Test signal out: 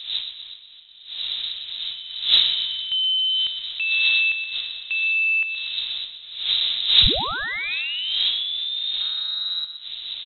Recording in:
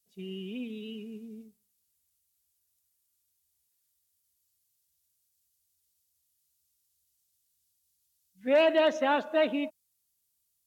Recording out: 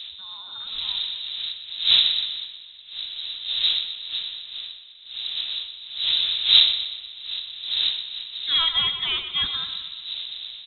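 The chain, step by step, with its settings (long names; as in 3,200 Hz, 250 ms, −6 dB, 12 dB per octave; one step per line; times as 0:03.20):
loose part that buzzes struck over −38 dBFS, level −37 dBFS
wind on the microphone 430 Hz −28 dBFS
repeating echo 123 ms, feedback 49%, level −10 dB
voice inversion scrambler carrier 3,900 Hz
low-shelf EQ 110 Hz +12 dB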